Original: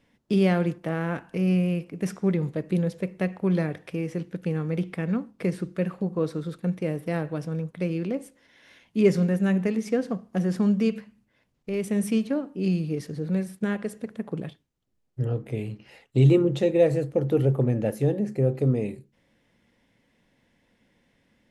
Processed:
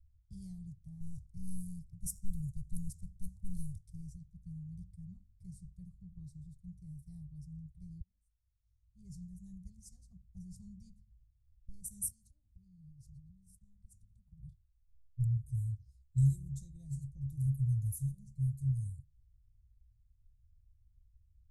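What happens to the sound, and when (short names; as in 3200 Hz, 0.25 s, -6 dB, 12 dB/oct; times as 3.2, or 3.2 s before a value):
1–4.15 sample leveller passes 1
8.01–9.7 fade in
12.08–14.43 compressor 5:1, threshold -37 dBFS
whole clip: inverse Chebyshev band-stop 240–2900 Hz, stop band 60 dB; low-pass opened by the level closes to 2200 Hz, open at -43 dBFS; low shelf 420 Hz +10 dB; gain +4.5 dB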